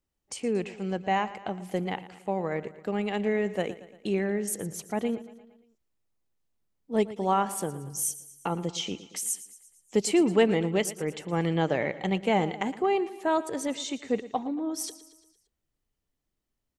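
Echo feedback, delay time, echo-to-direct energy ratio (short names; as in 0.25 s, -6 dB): 55%, 0.115 s, -14.5 dB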